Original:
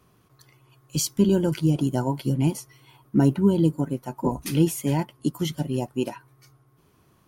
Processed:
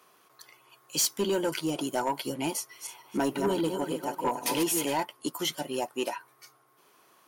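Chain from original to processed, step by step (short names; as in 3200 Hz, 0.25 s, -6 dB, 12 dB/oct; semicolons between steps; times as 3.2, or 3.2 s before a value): 2.57–4.86 regenerating reverse delay 0.152 s, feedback 45%, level -6 dB; HPF 560 Hz 12 dB/oct; soft clip -25 dBFS, distortion -14 dB; gain +5 dB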